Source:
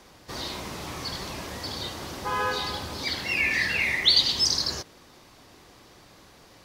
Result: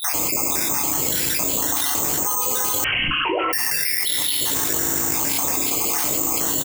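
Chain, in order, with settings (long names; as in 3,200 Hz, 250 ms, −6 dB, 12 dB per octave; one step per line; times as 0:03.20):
time-frequency cells dropped at random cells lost 56%
low-shelf EQ 130 Hz −11.5 dB
double-tracking delay 21 ms −10.5 dB
feedback delay network reverb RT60 1.2 s, low-frequency decay 1.2×, high-frequency decay 0.85×, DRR 3 dB
bad sample-rate conversion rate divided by 6×, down filtered, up zero stuff
0:02.84–0:03.53: voice inversion scrambler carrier 3,100 Hz
envelope flattener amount 100%
level −7 dB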